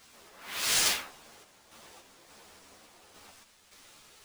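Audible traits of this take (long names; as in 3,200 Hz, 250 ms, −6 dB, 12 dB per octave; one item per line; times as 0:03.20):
a quantiser's noise floor 10 bits, dither triangular
sample-and-hold tremolo
aliases and images of a low sample rate 16,000 Hz, jitter 0%
a shimmering, thickened sound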